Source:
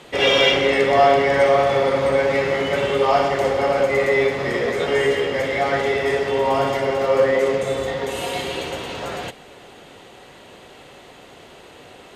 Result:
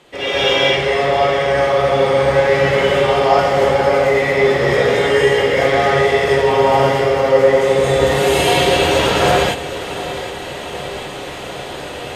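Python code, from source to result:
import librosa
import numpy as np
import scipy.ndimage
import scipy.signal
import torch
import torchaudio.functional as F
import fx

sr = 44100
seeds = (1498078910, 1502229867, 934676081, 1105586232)

p1 = fx.rider(x, sr, range_db=10, speed_s=0.5)
p2 = p1 + fx.echo_feedback(p1, sr, ms=757, feedback_pct=57, wet_db=-14.5, dry=0)
p3 = fx.rev_gated(p2, sr, seeds[0], gate_ms=260, shape='rising', drr_db=-7.5)
y = p3 * librosa.db_to_amplitude(-3.0)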